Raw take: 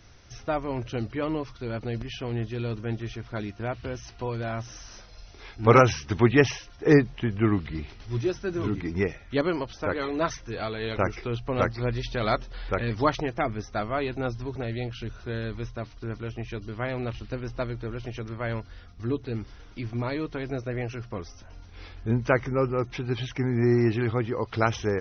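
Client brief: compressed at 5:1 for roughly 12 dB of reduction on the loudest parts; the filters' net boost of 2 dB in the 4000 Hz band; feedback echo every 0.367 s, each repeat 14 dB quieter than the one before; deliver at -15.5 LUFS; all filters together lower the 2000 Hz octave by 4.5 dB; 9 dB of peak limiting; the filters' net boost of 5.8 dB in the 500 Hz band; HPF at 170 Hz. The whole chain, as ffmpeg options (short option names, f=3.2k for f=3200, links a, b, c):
-af "highpass=170,equalizer=f=500:t=o:g=7.5,equalizer=f=2k:t=o:g=-7.5,equalizer=f=4k:t=o:g=5,acompressor=threshold=-22dB:ratio=5,alimiter=limit=-18.5dB:level=0:latency=1,aecho=1:1:367|734:0.2|0.0399,volume=15.5dB"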